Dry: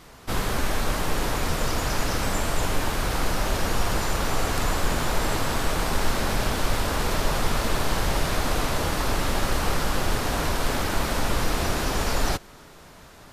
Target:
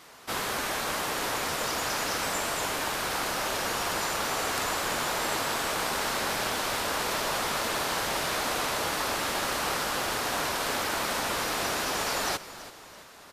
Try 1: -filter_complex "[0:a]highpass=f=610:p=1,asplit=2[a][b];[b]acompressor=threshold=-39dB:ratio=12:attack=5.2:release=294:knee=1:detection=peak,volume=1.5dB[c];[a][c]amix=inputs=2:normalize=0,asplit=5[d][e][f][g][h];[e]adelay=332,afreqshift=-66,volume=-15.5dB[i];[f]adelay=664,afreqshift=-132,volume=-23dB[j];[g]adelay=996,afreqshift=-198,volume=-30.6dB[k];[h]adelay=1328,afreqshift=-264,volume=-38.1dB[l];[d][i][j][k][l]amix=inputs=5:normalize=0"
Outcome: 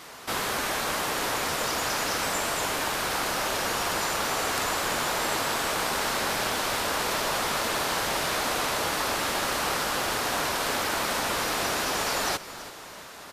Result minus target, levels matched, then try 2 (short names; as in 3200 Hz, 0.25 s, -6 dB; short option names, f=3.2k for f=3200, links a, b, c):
compressor: peak gain reduction +15 dB
-filter_complex "[0:a]highpass=f=610:p=1,asplit=5[a][b][c][d][e];[b]adelay=332,afreqshift=-66,volume=-15.5dB[f];[c]adelay=664,afreqshift=-132,volume=-23dB[g];[d]adelay=996,afreqshift=-198,volume=-30.6dB[h];[e]adelay=1328,afreqshift=-264,volume=-38.1dB[i];[a][f][g][h][i]amix=inputs=5:normalize=0"